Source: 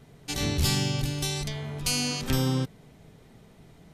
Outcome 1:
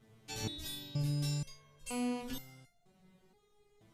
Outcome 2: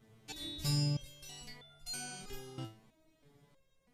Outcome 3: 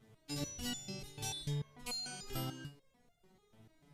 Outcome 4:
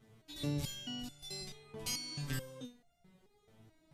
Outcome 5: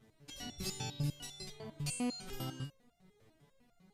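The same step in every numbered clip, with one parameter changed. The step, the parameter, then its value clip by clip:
step-sequenced resonator, speed: 2.1, 3.1, 6.8, 4.6, 10 Hertz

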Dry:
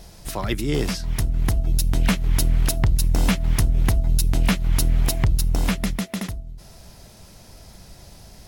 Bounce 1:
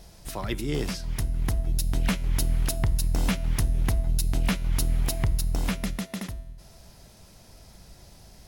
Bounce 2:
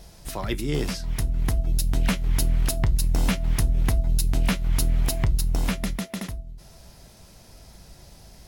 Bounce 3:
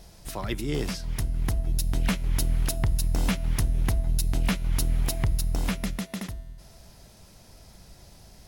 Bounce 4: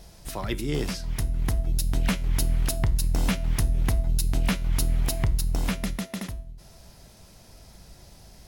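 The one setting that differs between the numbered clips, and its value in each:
tuned comb filter, decay: 1.1, 0.17, 2.2, 0.48 seconds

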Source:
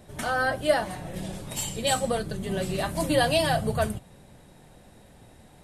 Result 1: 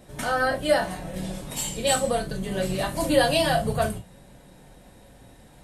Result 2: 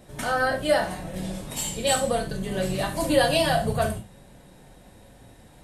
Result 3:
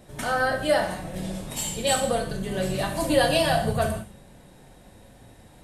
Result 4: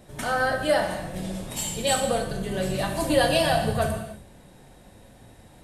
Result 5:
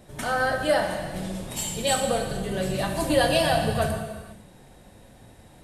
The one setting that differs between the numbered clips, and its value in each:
reverb whose tail is shaped and stops, gate: 80, 130, 220, 340, 530 milliseconds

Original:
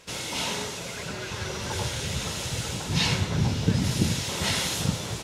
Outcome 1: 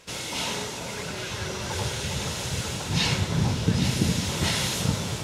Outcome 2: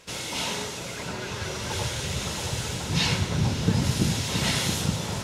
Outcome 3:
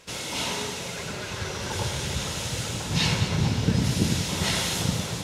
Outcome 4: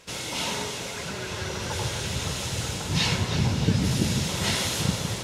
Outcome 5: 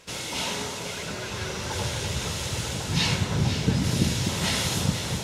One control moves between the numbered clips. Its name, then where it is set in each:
delay that swaps between a low-pass and a high-pass, delay time: 408, 674, 105, 160, 251 milliseconds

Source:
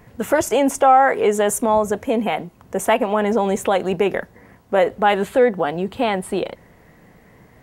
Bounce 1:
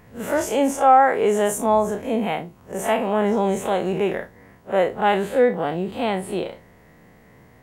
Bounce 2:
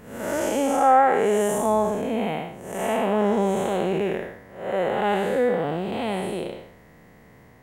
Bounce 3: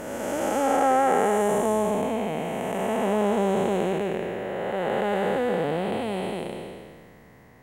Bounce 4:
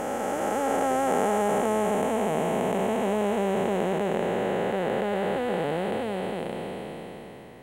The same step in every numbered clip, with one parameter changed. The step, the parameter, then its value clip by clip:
spectrum smeared in time, width: 81, 244, 658, 1,640 milliseconds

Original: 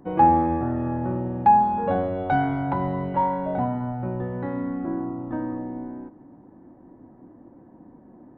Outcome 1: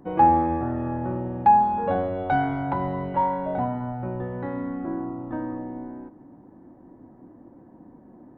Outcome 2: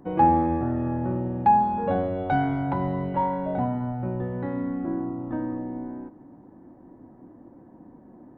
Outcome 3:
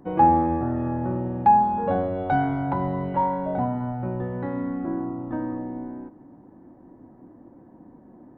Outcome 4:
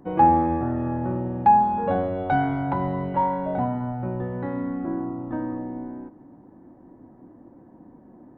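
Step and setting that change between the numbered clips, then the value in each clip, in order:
dynamic equaliser, frequency: 180, 1,100, 2,700, 8,100 Hertz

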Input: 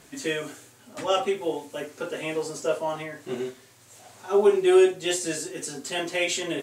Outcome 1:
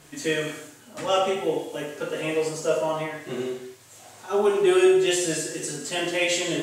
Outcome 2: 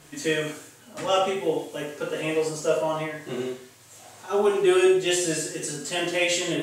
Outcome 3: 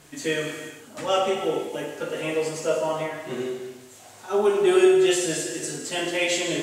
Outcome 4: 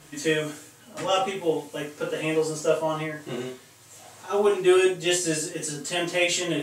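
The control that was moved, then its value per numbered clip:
reverb whose tail is shaped and stops, gate: 290, 200, 490, 80 milliseconds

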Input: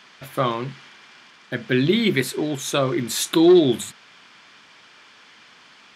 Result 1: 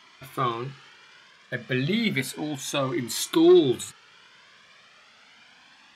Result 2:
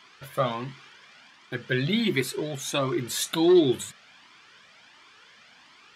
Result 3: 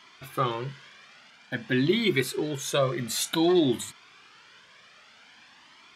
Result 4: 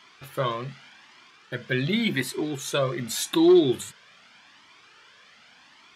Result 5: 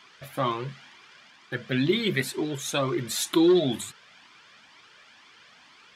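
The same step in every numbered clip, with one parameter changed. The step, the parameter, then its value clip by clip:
flanger whose copies keep moving one way, speed: 0.32, 1.4, 0.52, 0.86, 2.1 Hertz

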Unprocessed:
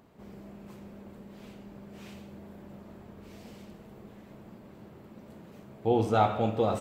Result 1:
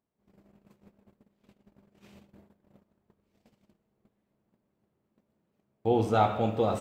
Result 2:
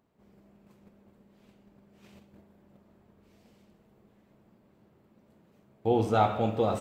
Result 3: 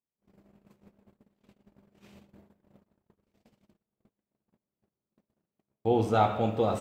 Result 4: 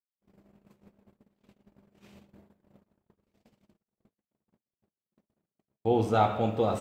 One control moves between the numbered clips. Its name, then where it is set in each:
noise gate, range: −27, −13, −41, −57 decibels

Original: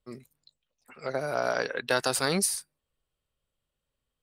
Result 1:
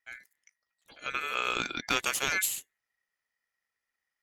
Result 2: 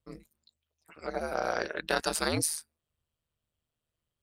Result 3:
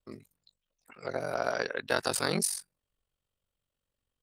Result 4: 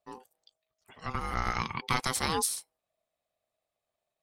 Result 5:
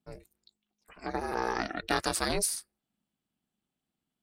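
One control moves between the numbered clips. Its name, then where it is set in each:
ring modulation, frequency: 1,900, 78, 23, 640, 210 Hertz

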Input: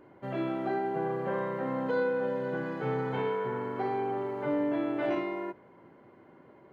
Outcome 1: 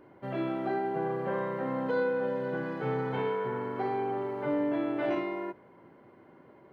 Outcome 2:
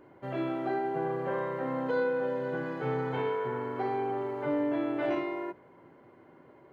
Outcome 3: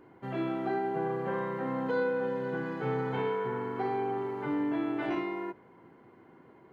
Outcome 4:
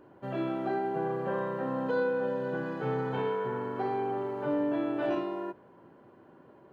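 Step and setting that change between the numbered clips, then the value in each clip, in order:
notch filter, centre frequency: 7,000, 200, 580, 2,100 Hertz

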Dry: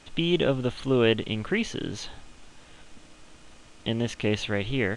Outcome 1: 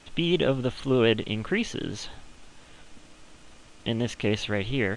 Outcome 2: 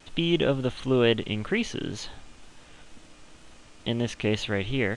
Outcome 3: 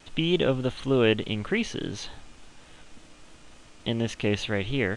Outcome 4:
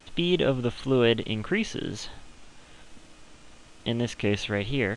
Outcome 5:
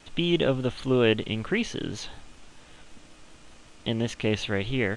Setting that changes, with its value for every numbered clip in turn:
pitch vibrato, speed: 9.5, 2.1, 3.4, 1.1, 5.2 Hertz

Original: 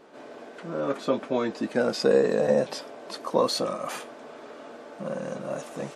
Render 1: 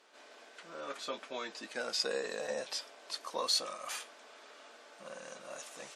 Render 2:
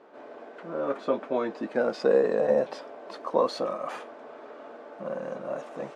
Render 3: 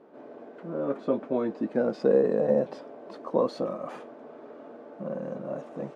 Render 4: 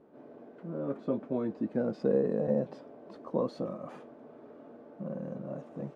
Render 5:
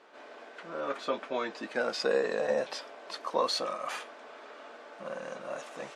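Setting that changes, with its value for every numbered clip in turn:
resonant band-pass, frequency: 5,900, 750, 290, 110, 2,100 Hertz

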